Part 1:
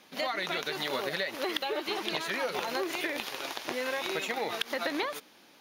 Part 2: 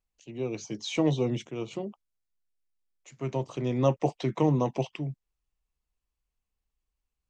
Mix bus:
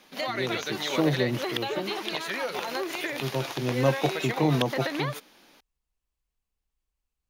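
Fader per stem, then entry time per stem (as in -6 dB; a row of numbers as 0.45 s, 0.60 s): +1.0 dB, +0.5 dB; 0.00 s, 0.00 s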